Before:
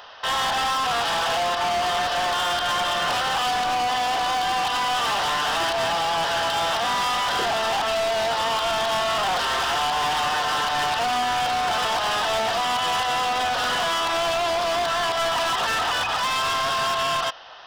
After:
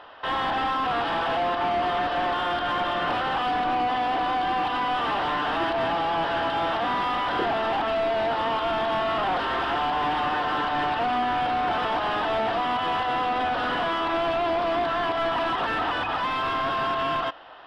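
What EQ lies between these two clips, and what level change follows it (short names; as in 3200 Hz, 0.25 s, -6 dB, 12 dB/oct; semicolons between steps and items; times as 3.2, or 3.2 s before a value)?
air absorption 410 m; bell 300 Hz +10 dB 0.57 oct; bell 9600 Hz +6.5 dB 0.73 oct; 0.0 dB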